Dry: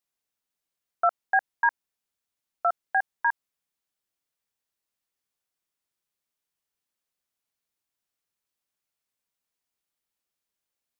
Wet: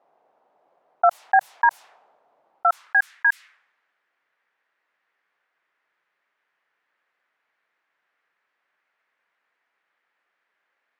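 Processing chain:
low-pass that shuts in the quiet parts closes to 450 Hz, open at −21 dBFS
parametric band 150 Hz +8 dB 0.23 octaves
high-pass filter sweep 730 Hz → 1,800 Hz, 0:02.49–0:03.19
envelope flattener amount 50%

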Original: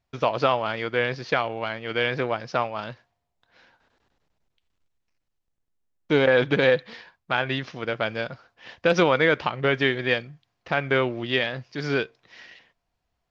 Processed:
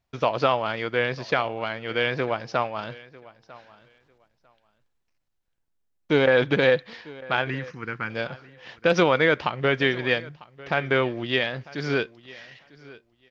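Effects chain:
0:07.50–0:08.10: phaser with its sweep stopped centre 1,500 Hz, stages 4
repeating echo 948 ms, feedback 17%, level −21 dB

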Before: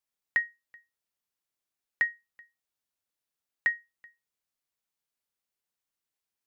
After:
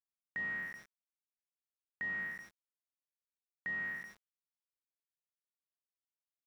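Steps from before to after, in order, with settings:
peak hold with a decay on every bin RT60 0.89 s
parametric band 190 Hz +14.5 dB 0.89 octaves
centre clipping without the shift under −48.5 dBFS
reversed playback
downward compressor 8 to 1, threshold −35 dBFS, peak gain reduction 15 dB
reversed playback
high-shelf EQ 2,600 Hz −11 dB
level +1.5 dB

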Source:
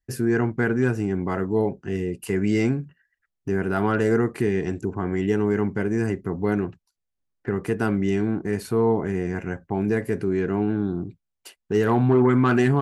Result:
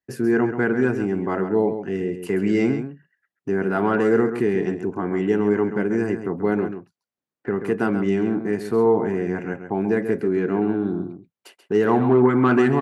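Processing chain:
high-pass filter 190 Hz 12 dB per octave
high-shelf EQ 3,600 Hz −10.5 dB
slap from a distant wall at 23 metres, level −9 dB
level +3 dB

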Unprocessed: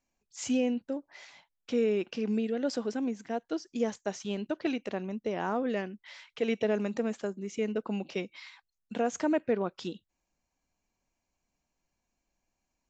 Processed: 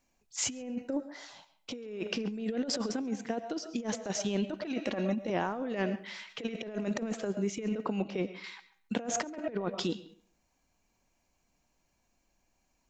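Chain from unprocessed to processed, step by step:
convolution reverb RT60 0.35 s, pre-delay 70 ms, DRR 15 dB
in parallel at −1 dB: output level in coarse steps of 22 dB
0:00.54–0:01.73: on the sum: parametric band 4,300 Hz → 1,600 Hz −13.5 dB 0.42 octaves
0:04.86–0:05.30: comb filter 3.6 ms, depth 73%
0:08.02–0:08.44: high-shelf EQ 2,800 Hz −12 dB
compressor whose output falls as the input rises −32 dBFS, ratio −0.5
on a send: feedback echo with a low-pass in the loop 137 ms, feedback 24%, low-pass 4,300 Hz, level −22 dB

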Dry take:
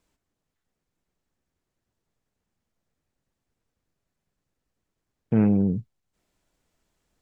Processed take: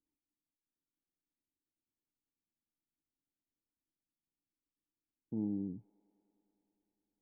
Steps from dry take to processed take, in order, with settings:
formant resonators in series u
delay with a high-pass on its return 102 ms, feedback 85%, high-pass 1,600 Hz, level −8.5 dB
level −8.5 dB

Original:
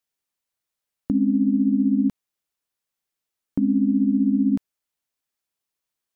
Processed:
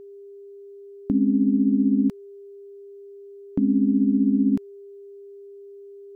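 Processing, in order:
steady tone 400 Hz −40 dBFS

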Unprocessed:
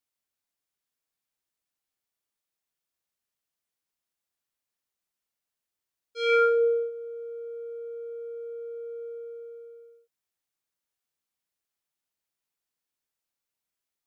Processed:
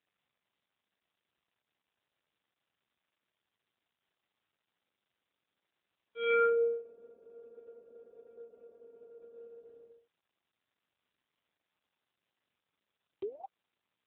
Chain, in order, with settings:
sound drawn into the spectrogram rise, 0:13.22–0:13.46, 370–810 Hz −28 dBFS
level −4.5 dB
AMR narrowband 7.95 kbit/s 8,000 Hz

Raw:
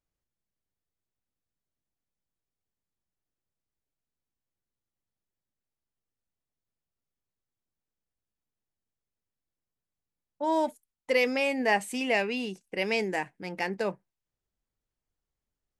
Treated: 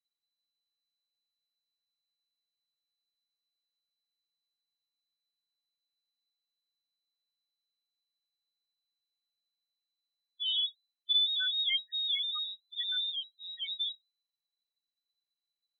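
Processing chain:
voice inversion scrambler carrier 4,000 Hz
spectral peaks only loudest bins 2

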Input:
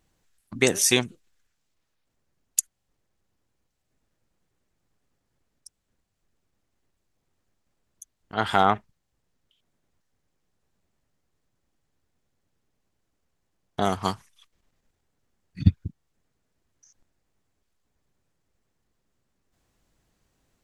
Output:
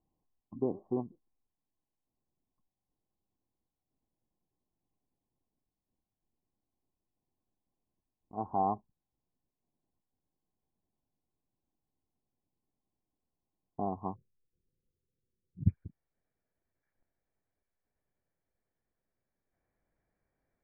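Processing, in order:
Chebyshev low-pass with heavy ripple 1,100 Hz, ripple 6 dB, from 0:14.14 530 Hz, from 0:15.68 2,400 Hz
level −7 dB

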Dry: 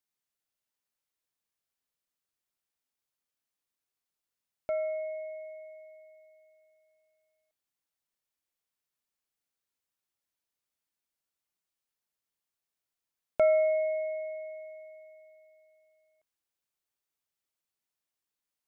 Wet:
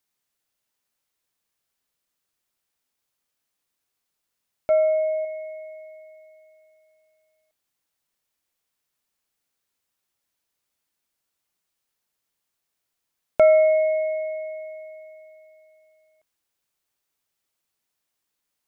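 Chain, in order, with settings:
0:04.70–0:05.25: comb filter 1.7 ms, depth 62%
level +8.5 dB

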